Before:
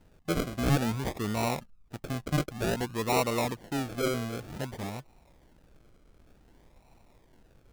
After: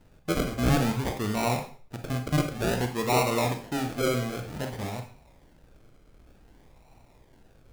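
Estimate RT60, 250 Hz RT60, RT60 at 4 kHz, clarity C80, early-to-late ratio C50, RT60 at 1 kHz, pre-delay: 0.45 s, 0.50 s, 0.40 s, 13.5 dB, 9.0 dB, 0.45 s, 25 ms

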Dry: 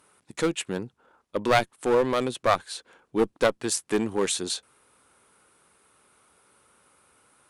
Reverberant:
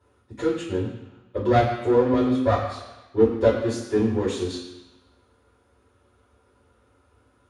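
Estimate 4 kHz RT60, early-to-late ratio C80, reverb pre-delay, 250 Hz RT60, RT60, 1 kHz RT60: 1.1 s, 7.0 dB, 3 ms, 0.95 s, 1.0 s, 1.1 s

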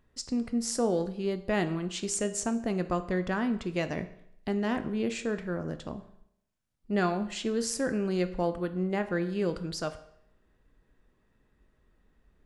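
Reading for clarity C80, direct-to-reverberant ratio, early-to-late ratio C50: 16.0 dB, 9.0 dB, 13.5 dB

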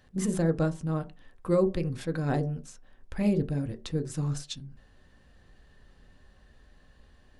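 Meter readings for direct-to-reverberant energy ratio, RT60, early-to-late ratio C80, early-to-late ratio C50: 7.0 dB, non-exponential decay, 23.5 dB, 17.5 dB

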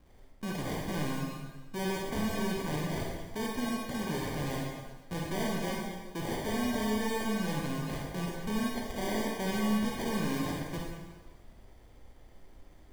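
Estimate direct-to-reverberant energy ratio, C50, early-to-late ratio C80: −2.0 dB, −0.5 dB, 2.5 dB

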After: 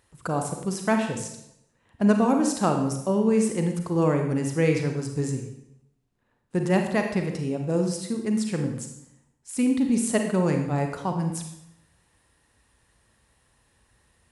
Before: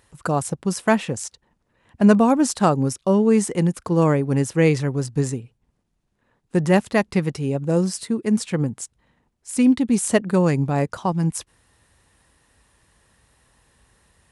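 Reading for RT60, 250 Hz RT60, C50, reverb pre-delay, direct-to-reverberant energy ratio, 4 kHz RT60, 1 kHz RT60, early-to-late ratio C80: 0.80 s, 0.90 s, 5.5 dB, 33 ms, 3.5 dB, 0.70 s, 0.75 s, 8.5 dB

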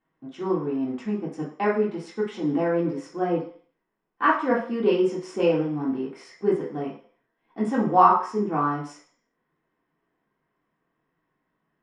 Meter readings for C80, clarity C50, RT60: 10.0 dB, 6.5 dB, 0.50 s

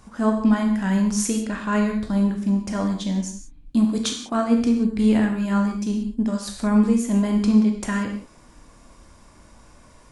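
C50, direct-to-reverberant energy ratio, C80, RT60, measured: 5.5 dB, 2.5 dB, 9.0 dB, non-exponential decay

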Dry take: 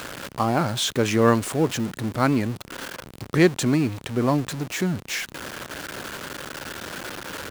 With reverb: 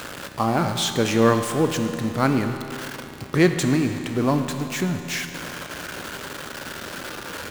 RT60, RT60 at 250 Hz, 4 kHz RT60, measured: 3.0 s, 3.0 s, 2.7 s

